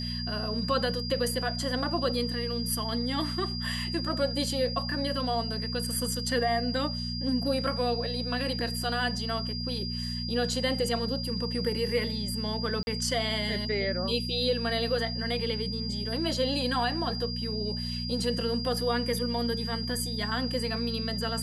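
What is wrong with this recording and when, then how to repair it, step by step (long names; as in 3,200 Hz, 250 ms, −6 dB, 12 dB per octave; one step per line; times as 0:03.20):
mains hum 60 Hz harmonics 4 −35 dBFS
whistle 4,800 Hz −35 dBFS
0:12.83–0:12.87: drop-out 41 ms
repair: notch filter 4,800 Hz, Q 30
hum removal 60 Hz, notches 4
repair the gap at 0:12.83, 41 ms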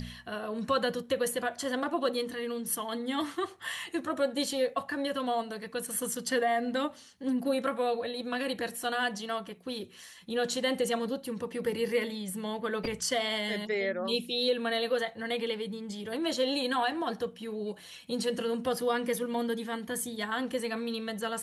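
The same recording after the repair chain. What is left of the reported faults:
none of them is left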